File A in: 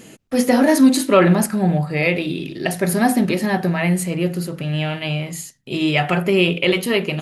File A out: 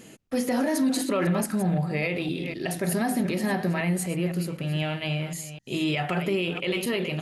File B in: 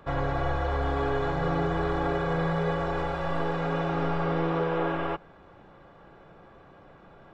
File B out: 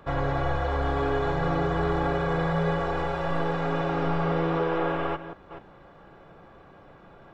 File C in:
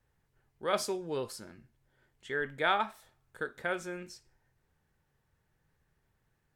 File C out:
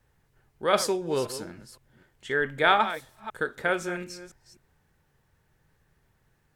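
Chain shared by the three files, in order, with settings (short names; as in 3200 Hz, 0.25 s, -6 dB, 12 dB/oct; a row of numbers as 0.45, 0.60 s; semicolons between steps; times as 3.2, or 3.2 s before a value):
reverse delay 0.254 s, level -12.5 dB; maximiser +10.5 dB; match loudness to -27 LUFS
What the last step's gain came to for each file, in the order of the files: -16.0, -9.5, -3.0 dB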